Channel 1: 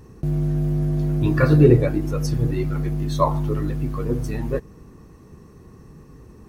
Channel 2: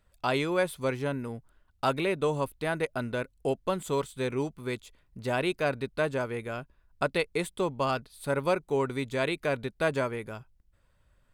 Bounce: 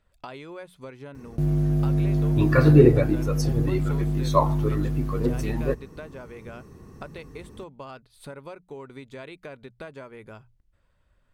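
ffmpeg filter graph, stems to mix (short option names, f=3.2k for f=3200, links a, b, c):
-filter_complex "[0:a]adelay=1150,volume=-0.5dB[a];[1:a]highshelf=f=8.3k:g=-10.5,acompressor=threshold=-38dB:ratio=6,volume=0dB[b];[a][b]amix=inputs=2:normalize=0,bandreject=f=60:t=h:w=6,bandreject=f=120:t=h:w=6,bandreject=f=180:t=h:w=6"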